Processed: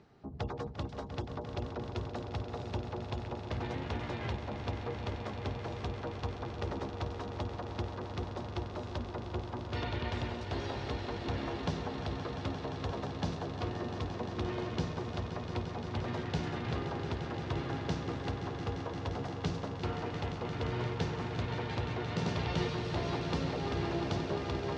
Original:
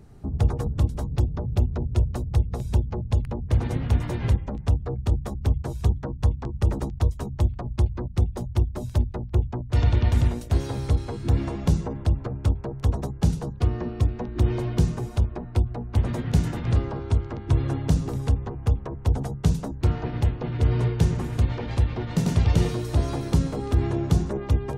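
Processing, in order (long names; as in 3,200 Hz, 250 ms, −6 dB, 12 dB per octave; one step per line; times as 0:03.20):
high-pass filter 540 Hz 6 dB per octave
echo that builds up and dies away 174 ms, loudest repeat 5, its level −11 dB
reversed playback
upward compression, threshold −46 dBFS
reversed playback
low-pass filter 5,000 Hz 24 dB per octave
level −3 dB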